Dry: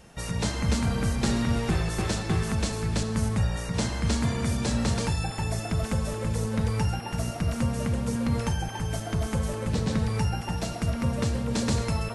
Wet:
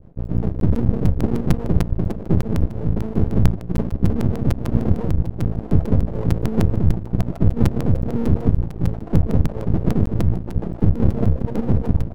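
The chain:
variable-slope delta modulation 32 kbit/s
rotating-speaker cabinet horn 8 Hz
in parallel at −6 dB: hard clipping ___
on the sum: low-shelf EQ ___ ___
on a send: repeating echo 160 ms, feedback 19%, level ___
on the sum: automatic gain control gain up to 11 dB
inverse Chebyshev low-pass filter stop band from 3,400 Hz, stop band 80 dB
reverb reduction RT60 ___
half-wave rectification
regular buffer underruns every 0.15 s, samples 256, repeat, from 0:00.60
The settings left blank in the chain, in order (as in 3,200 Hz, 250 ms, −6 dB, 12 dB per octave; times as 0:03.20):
−25 dBFS, 390 Hz, +11 dB, −7 dB, 2 s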